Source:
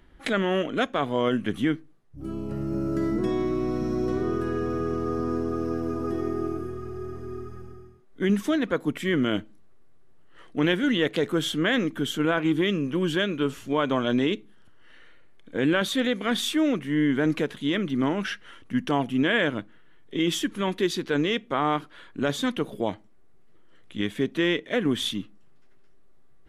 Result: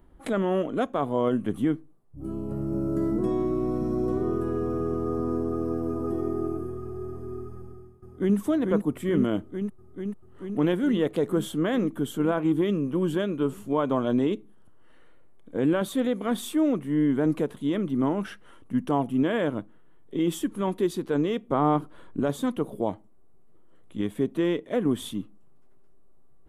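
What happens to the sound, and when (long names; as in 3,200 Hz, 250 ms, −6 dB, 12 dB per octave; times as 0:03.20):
0:07.58–0:08.37: delay throw 440 ms, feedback 80%, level −4 dB
0:21.49–0:22.21: low-shelf EQ 450 Hz +7 dB
whole clip: flat-topped bell 3,100 Hz −11.5 dB 2.4 octaves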